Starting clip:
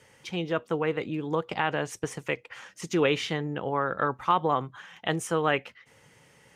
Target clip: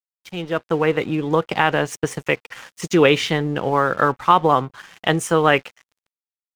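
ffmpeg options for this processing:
-af "dynaudnorm=f=140:g=9:m=9dB,aeval=exprs='sgn(val(0))*max(abs(val(0))-0.0075,0)':c=same,volume=2dB"

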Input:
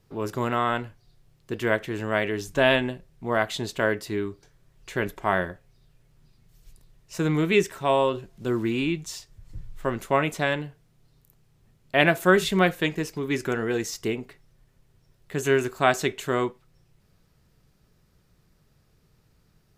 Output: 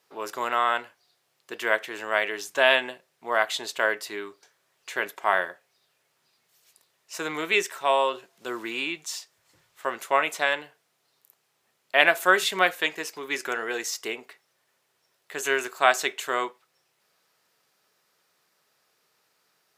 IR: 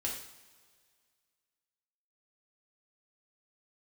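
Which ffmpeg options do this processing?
-af "highpass=680,volume=3dB"

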